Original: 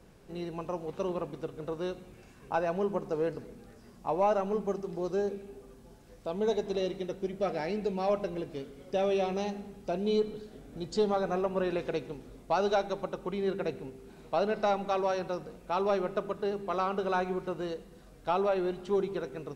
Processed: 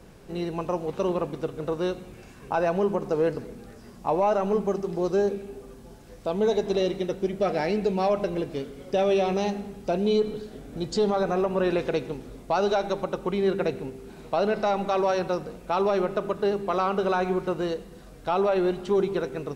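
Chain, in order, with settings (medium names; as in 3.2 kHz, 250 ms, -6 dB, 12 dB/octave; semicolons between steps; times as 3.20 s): peak limiter -22.5 dBFS, peak gain reduction 5.5 dB; trim +7.5 dB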